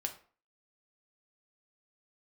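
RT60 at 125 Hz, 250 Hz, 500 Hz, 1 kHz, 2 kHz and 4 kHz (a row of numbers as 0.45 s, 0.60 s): 0.35 s, 0.45 s, 0.45 s, 0.45 s, 0.35 s, 0.30 s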